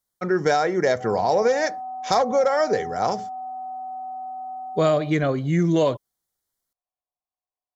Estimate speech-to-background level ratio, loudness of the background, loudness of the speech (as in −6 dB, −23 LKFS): 12.0 dB, −34.0 LKFS, −22.0 LKFS